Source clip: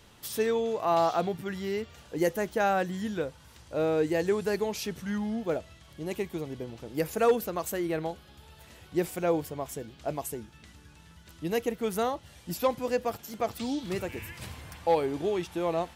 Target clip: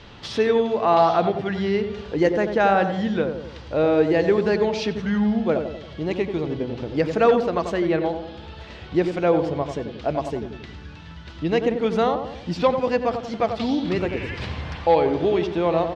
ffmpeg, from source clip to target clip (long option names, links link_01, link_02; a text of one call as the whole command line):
ffmpeg -i in.wav -filter_complex "[0:a]lowpass=frequency=4600:width=0.5412,lowpass=frequency=4600:width=1.3066,asplit=2[link_01][link_02];[link_02]acompressor=threshold=-40dB:ratio=6,volume=0dB[link_03];[link_01][link_03]amix=inputs=2:normalize=0,asplit=2[link_04][link_05];[link_05]adelay=91,lowpass=frequency=1100:poles=1,volume=-6dB,asplit=2[link_06][link_07];[link_07]adelay=91,lowpass=frequency=1100:poles=1,volume=0.54,asplit=2[link_08][link_09];[link_09]adelay=91,lowpass=frequency=1100:poles=1,volume=0.54,asplit=2[link_10][link_11];[link_11]adelay=91,lowpass=frequency=1100:poles=1,volume=0.54,asplit=2[link_12][link_13];[link_13]adelay=91,lowpass=frequency=1100:poles=1,volume=0.54,asplit=2[link_14][link_15];[link_15]adelay=91,lowpass=frequency=1100:poles=1,volume=0.54,asplit=2[link_16][link_17];[link_17]adelay=91,lowpass=frequency=1100:poles=1,volume=0.54[link_18];[link_04][link_06][link_08][link_10][link_12][link_14][link_16][link_18]amix=inputs=8:normalize=0,volume=6dB" out.wav